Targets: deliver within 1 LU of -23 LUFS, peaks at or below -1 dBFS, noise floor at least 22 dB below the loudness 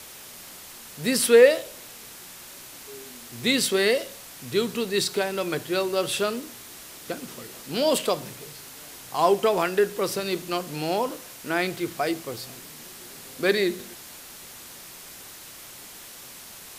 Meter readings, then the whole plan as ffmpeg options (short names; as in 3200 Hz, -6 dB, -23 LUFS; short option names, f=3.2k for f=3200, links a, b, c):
noise floor -44 dBFS; noise floor target -47 dBFS; loudness -24.5 LUFS; peak -4.5 dBFS; loudness target -23.0 LUFS
-> -af "afftdn=nr=6:nf=-44"
-af "volume=1.5dB"